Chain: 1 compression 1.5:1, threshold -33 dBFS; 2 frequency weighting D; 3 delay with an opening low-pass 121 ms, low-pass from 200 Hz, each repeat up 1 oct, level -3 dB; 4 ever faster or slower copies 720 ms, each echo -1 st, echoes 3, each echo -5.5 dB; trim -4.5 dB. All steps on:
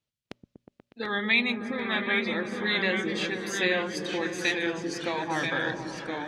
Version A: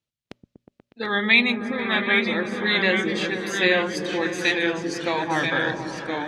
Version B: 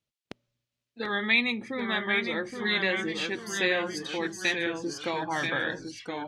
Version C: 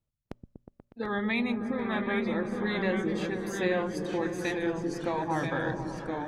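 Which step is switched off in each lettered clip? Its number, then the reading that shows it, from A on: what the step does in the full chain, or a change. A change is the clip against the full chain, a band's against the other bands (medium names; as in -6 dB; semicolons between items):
1, mean gain reduction 4.5 dB; 3, 125 Hz band -2.0 dB; 2, 4 kHz band -11.5 dB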